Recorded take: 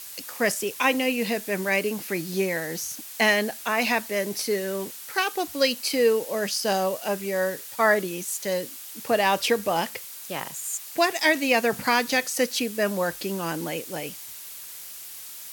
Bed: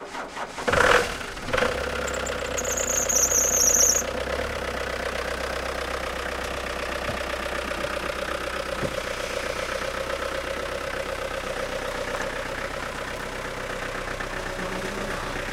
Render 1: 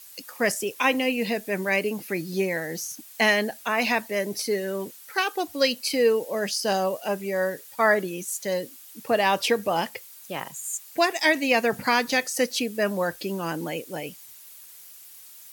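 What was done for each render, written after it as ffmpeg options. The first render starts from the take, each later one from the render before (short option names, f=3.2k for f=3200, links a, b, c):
-af "afftdn=nr=9:nf=-40"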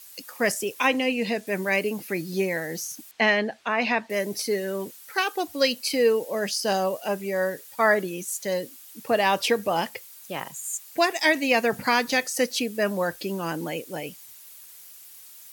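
-filter_complex "[0:a]asettb=1/sr,asplit=3[a][b][c];[a]atrim=end=0.874[d];[b]atrim=start=0.87:end=1.47,asetpts=PTS-STARTPTS,afade=t=in:d=0.004:c=qsin,afade=t=out:st=0.596:d=0.004:c=qsin,acrossover=split=9800[e][f];[f]acompressor=threshold=-58dB:ratio=4:attack=1:release=60[g];[e][g]amix=inputs=2:normalize=0[h];[c]atrim=start=1.466[i];[d][h]acrossfade=d=0.004:c1=hsin:c2=qsin[j];[j][i]acrossfade=d=0.004:c1=qsin:c2=hsin,asettb=1/sr,asplit=3[k][l][m];[k]atrim=end=3.114[n];[l]atrim=start=3.11:end=4.1,asetpts=PTS-STARTPTS,afade=t=in:d=0.004:c=qsin,afade=t=out:st=0.986:d=0.004:c=qsin,lowpass=3.6k[o];[m]atrim=start=4.096[p];[n][o]acrossfade=d=0.004:c1=hsin:c2=qsin[q];[q][p]acrossfade=d=0.004:c1=qsin:c2=hsin"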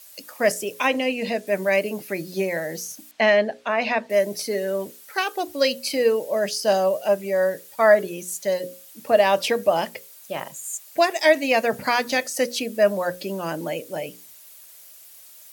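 -af "equalizer=f=610:w=5.4:g=10.5,bandreject=f=60:t=h:w=6,bandreject=f=120:t=h:w=6,bandreject=f=180:t=h:w=6,bandreject=f=240:t=h:w=6,bandreject=f=300:t=h:w=6,bandreject=f=360:t=h:w=6,bandreject=f=420:t=h:w=6,bandreject=f=480:t=h:w=6,bandreject=f=540:t=h:w=6"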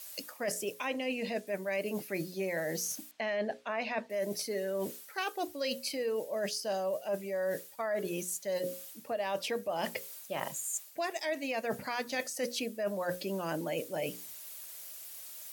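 -af "alimiter=limit=-13dB:level=0:latency=1:release=161,areverse,acompressor=threshold=-32dB:ratio=6,areverse"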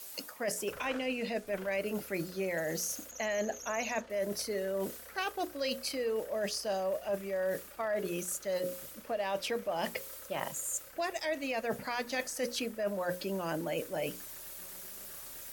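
-filter_complex "[1:a]volume=-27dB[a];[0:a][a]amix=inputs=2:normalize=0"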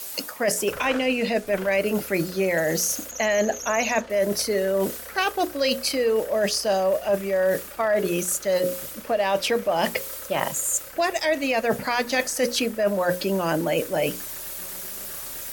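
-af "volume=11.5dB"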